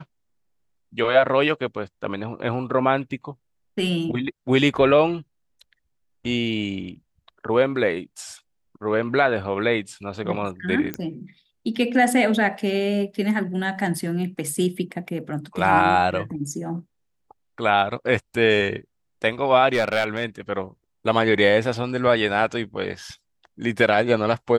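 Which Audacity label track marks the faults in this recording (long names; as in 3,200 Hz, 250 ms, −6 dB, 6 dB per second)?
10.940000	10.940000	click −12 dBFS
19.730000	20.250000	clipping −14.5 dBFS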